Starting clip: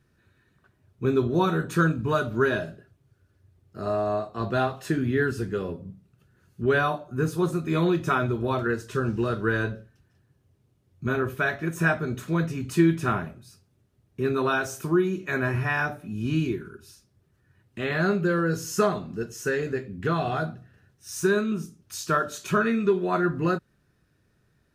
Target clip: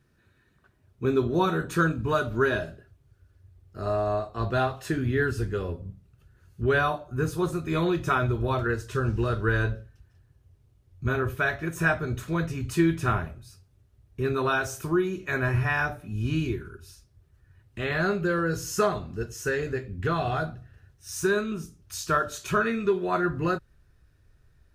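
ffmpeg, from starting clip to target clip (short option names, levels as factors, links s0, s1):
-af "asubboost=boost=9.5:cutoff=61"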